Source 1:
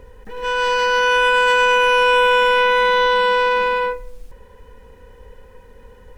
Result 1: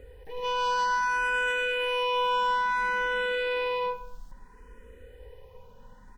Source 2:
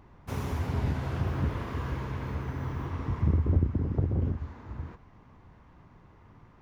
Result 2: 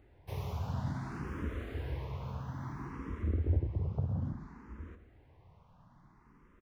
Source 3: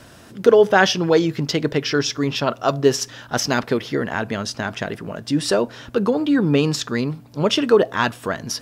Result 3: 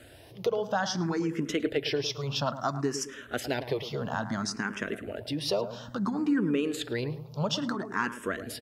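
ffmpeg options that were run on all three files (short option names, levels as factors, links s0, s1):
-filter_complex "[0:a]acompressor=threshold=0.126:ratio=6,asplit=2[s0][s1];[s1]adelay=108,lowpass=f=1300:p=1,volume=0.316,asplit=2[s2][s3];[s3]adelay=108,lowpass=f=1300:p=1,volume=0.42,asplit=2[s4][s5];[s5]adelay=108,lowpass=f=1300:p=1,volume=0.42,asplit=2[s6][s7];[s7]adelay=108,lowpass=f=1300:p=1,volume=0.42[s8];[s0][s2][s4][s6][s8]amix=inputs=5:normalize=0,asplit=2[s9][s10];[s10]afreqshift=0.59[s11];[s9][s11]amix=inputs=2:normalize=1,volume=0.631"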